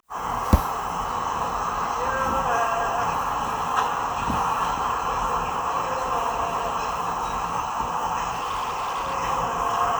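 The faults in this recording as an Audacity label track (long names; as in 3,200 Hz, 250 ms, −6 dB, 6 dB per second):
8.330000	9.150000	clipping −24 dBFS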